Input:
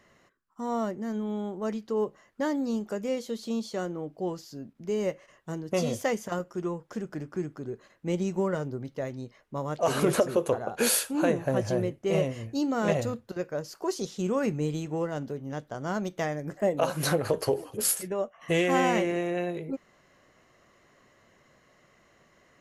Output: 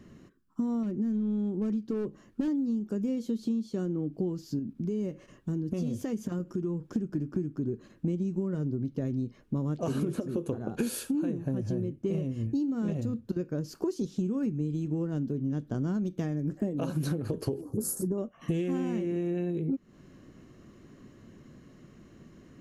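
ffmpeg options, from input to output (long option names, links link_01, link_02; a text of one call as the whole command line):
ffmpeg -i in.wav -filter_complex "[0:a]asettb=1/sr,asplit=3[link_01][link_02][link_03];[link_01]atrim=end=0.834[link_04];[link_02]atrim=start=0.83:end=2.48,asetpts=PTS-STARTPTS,afade=type=in:duration=0.004:curve=qsin,afade=type=out:start_time=1.646:duration=0.004:curve=qsin,volume=28.5dB,asoftclip=hard,volume=-28.5dB[link_05];[link_03]atrim=start=2.476[link_06];[link_04][link_05]acrossfade=duration=0.004:curve1=hsin:curve2=qsin[link_07];[link_07][link_06]acrossfade=duration=0.004:curve1=qsin:curve2=hsin,asettb=1/sr,asplit=3[link_08][link_09][link_10];[link_08]atrim=end=4.594[link_11];[link_09]atrim=start=4.59:end=6.96,asetpts=PTS-STARTPTS,afade=type=in:duration=0.004:curve=qsin,afade=type=out:start_time=2.366:duration=0.004:curve=qsin,acompressor=threshold=-46dB:ratio=2:attack=3.2:release=140:knee=1:detection=peak[link_12];[link_10]atrim=start=6.956[link_13];[link_11][link_12]acrossfade=duration=0.004:curve1=hsin:curve2=qsin[link_14];[link_14][link_13]acrossfade=duration=0.004:curve1=qsin:curve2=hsin,asettb=1/sr,asplit=3[link_15][link_16][link_17];[link_15]atrim=end=17.614[link_18];[link_16]atrim=start=17.61:end=18.18,asetpts=PTS-STARTPTS,afade=type=in:duration=0.004:curve=qsin,afade=type=out:start_time=0.566:duration=0.004:curve=qsin,asuperstop=centerf=2700:order=4:qfactor=0.56[link_19];[link_17]atrim=start=18.176[link_20];[link_18][link_19]acrossfade=duration=0.004:curve1=hsin:curve2=qsin[link_21];[link_21][link_20]acrossfade=duration=0.004:curve1=qsin:curve2=hsin,lowshelf=frequency=430:width_type=q:width=1.5:gain=13.5,bandreject=frequency=2000:width=9.4,acompressor=threshold=-27dB:ratio=16" out.wav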